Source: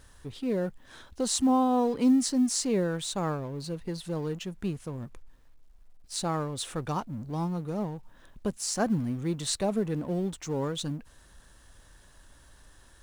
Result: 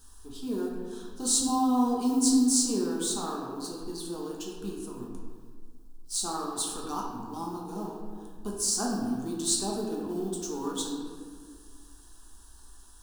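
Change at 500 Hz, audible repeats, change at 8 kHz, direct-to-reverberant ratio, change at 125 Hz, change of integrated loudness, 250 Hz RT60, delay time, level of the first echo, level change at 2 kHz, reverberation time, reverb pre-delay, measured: -3.5 dB, none, +6.0 dB, -3.0 dB, -11.0 dB, +0.5 dB, 2.1 s, none, none, -6.0 dB, 1.8 s, 5 ms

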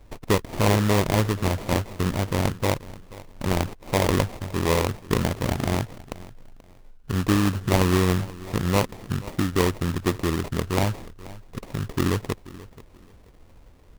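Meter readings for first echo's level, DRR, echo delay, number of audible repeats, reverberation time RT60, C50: -19.0 dB, none, 0.482 s, 2, none, none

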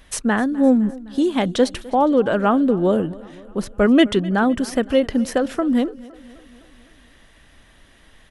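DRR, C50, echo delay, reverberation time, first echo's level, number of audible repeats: none, none, 0.256 s, none, -21.0 dB, 3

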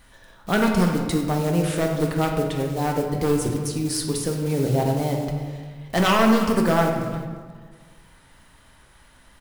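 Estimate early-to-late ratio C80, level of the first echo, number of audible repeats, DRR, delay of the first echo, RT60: 5.5 dB, -17.0 dB, 1, 1.0 dB, 0.35 s, 1.7 s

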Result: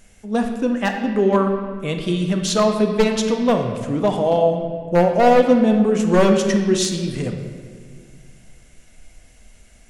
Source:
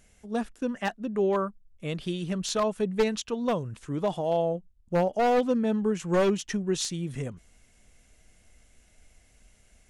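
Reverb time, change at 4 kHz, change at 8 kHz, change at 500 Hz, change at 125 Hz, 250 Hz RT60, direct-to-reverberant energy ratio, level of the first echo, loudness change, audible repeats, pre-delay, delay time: 1.9 s, +9.0 dB, +8.5 dB, +9.5 dB, +10.0 dB, 2.6 s, 3.5 dB, none, +10.0 dB, none, 3 ms, none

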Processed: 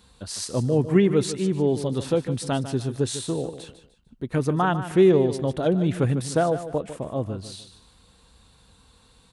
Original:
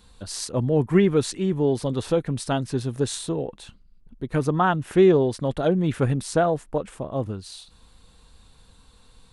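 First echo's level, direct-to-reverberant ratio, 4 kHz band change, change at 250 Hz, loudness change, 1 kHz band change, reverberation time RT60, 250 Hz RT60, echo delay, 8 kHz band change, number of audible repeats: -12.0 dB, none, 0.0 dB, 0.0 dB, -0.5 dB, -2.0 dB, none, none, 0.15 s, 0.0 dB, 3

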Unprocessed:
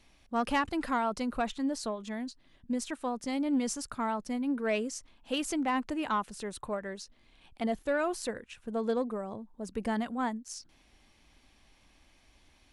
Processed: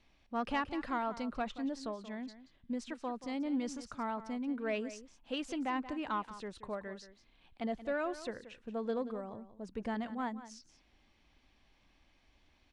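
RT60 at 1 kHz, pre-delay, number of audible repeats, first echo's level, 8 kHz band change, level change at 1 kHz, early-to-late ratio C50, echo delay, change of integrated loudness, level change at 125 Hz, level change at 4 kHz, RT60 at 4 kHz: none, none, 1, -14.0 dB, -13.5 dB, -5.5 dB, none, 0.179 s, -5.5 dB, -5.5 dB, -6.5 dB, none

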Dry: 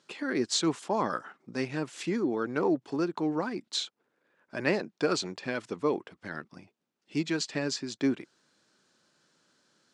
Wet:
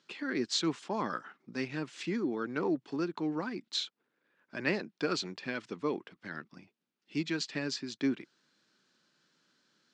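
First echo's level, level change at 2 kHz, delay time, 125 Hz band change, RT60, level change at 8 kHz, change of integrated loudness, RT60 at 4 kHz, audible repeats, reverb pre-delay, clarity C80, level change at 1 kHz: none, -2.0 dB, none, -4.0 dB, none, -6.5 dB, -3.5 dB, none, none, none, none, -5.0 dB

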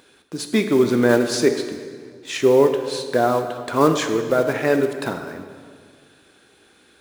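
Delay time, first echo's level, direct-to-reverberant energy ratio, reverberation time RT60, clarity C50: none, none, 6.5 dB, 1.9 s, 8.0 dB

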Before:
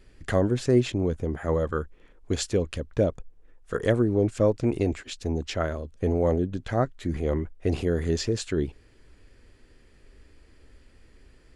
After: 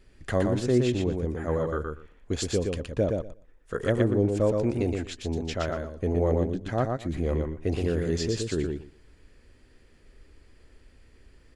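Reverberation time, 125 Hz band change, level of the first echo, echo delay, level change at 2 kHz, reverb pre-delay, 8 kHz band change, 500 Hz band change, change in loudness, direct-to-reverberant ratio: none, -0.5 dB, -4.0 dB, 0.119 s, -1.0 dB, none, -1.0 dB, -1.0 dB, -1.0 dB, none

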